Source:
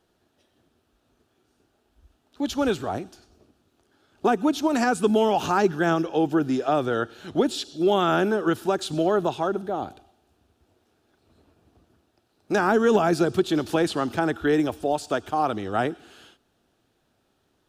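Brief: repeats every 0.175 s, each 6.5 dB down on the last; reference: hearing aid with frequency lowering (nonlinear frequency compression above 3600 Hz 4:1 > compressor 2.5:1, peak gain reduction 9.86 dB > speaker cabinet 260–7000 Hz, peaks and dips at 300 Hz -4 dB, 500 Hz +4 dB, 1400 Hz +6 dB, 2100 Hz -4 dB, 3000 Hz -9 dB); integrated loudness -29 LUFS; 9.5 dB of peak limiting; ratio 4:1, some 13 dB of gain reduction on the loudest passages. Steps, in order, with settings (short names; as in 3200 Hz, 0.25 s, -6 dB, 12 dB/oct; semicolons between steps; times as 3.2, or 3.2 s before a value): compressor 4:1, threshold -32 dBFS; limiter -29 dBFS; feedback echo 0.175 s, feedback 47%, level -6.5 dB; nonlinear frequency compression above 3600 Hz 4:1; compressor 2.5:1, threshold -45 dBFS; speaker cabinet 260–7000 Hz, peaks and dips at 300 Hz -4 dB, 500 Hz +4 dB, 1400 Hz +6 dB, 2100 Hz -4 dB, 3000 Hz -9 dB; gain +17 dB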